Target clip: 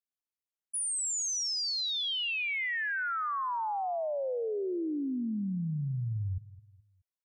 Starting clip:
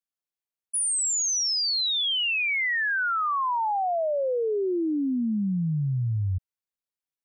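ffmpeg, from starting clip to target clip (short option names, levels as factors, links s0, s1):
-af "aecho=1:1:212|424|636:0.126|0.0478|0.0182,volume=0.447"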